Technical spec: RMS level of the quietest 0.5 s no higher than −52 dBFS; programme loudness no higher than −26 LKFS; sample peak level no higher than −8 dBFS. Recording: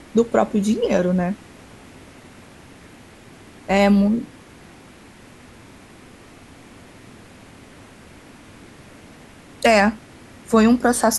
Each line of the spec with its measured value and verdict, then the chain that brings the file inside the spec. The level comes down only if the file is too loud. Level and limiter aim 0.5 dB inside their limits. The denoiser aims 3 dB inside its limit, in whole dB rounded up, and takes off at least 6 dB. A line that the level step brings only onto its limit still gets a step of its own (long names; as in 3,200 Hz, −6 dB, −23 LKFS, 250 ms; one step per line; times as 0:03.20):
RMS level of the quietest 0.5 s −45 dBFS: out of spec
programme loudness −18.5 LKFS: out of spec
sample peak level −4.5 dBFS: out of spec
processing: level −8 dB